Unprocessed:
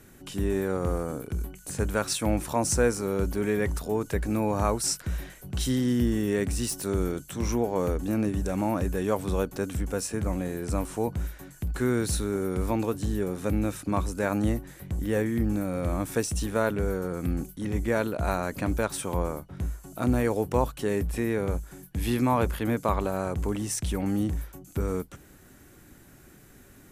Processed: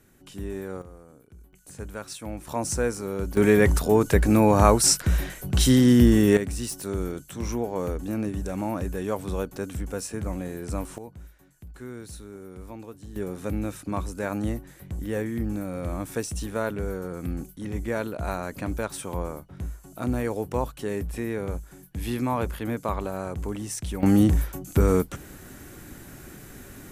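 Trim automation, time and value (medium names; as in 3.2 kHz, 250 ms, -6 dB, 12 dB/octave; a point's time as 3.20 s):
-6.5 dB
from 0.82 s -18.5 dB
from 1.53 s -9.5 dB
from 2.47 s -2.5 dB
from 3.37 s +8.5 dB
from 6.37 s -2 dB
from 10.98 s -13.5 dB
from 13.16 s -2.5 dB
from 24.03 s +9 dB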